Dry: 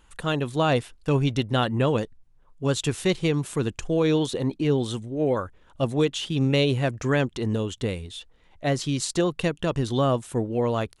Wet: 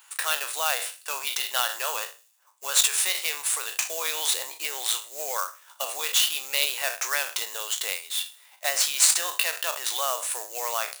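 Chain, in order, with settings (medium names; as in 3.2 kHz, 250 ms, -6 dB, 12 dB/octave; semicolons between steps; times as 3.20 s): spectral sustain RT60 0.30 s; in parallel at -4 dB: sample-rate reducer 7.2 kHz, jitter 20%; on the sum: peak limiter -14 dBFS, peak gain reduction 8 dB; high-pass 650 Hz 24 dB/octave; tilt EQ +4.5 dB/octave; band-stop 3.2 kHz, Q 24; on a send: feedback echo behind a high-pass 79 ms, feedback 58%, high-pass 5.2 kHz, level -20 dB; on the sum: trim -1 dB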